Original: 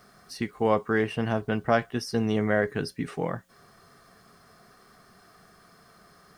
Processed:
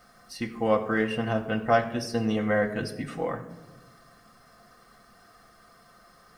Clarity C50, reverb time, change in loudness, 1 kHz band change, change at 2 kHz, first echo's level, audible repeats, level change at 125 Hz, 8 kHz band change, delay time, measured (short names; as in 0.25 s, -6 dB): 11.5 dB, 1.1 s, 0.0 dB, +1.0 dB, +0.5 dB, none, none, -2.0 dB, 0.0 dB, none